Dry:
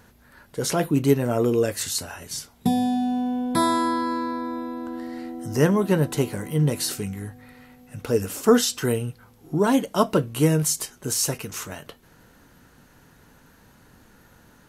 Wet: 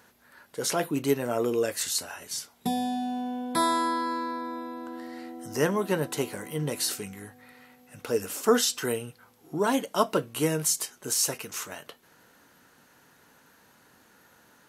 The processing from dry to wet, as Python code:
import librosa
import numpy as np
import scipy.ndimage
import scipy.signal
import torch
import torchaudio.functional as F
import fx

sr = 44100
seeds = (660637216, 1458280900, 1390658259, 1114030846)

y = fx.highpass(x, sr, hz=460.0, slope=6)
y = y * librosa.db_to_amplitude(-1.5)